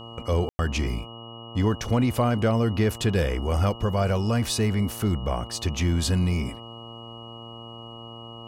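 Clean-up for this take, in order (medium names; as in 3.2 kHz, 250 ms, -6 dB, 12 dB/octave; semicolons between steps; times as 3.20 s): de-hum 115.5 Hz, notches 11; band-stop 2.9 kHz, Q 30; room tone fill 0.49–0.59 s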